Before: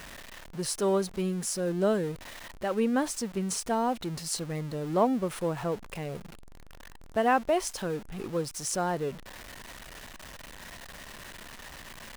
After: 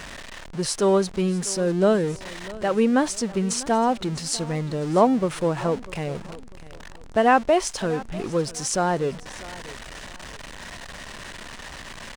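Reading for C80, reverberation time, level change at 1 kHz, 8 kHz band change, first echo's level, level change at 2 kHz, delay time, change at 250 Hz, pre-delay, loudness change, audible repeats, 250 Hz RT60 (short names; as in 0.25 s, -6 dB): none, none, +7.0 dB, +5.5 dB, -19.0 dB, +7.0 dB, 0.647 s, +7.0 dB, none, +7.0 dB, 2, none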